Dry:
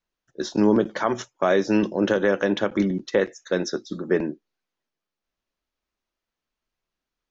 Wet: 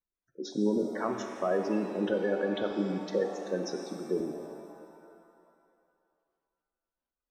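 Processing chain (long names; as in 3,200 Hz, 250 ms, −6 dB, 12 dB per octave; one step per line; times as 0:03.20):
gate on every frequency bin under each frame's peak −15 dB strong
reverb with rising layers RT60 2.3 s, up +7 semitones, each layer −8 dB, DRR 4.5 dB
level −9 dB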